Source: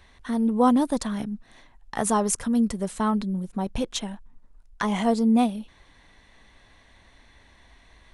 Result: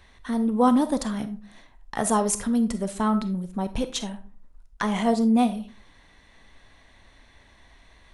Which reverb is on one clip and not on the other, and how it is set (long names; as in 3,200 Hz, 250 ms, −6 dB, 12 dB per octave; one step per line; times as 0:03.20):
comb and all-pass reverb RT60 0.41 s, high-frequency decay 0.5×, pre-delay 5 ms, DRR 10.5 dB